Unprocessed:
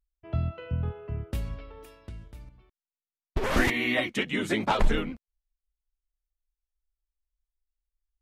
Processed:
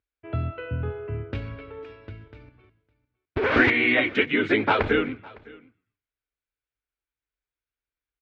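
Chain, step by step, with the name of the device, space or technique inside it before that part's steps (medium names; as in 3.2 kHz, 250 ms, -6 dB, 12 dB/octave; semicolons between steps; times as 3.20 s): frequency-shifting delay pedal into a guitar cabinet (frequency-shifting echo 122 ms, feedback 40%, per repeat -68 Hz, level -24 dB; cabinet simulation 91–4100 Hz, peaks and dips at 100 Hz +8 dB, 180 Hz -9 dB, 290 Hz +7 dB, 440 Hz +8 dB, 1.5 kHz +9 dB, 2.3 kHz +7 dB); delay 558 ms -23.5 dB; trim +1.5 dB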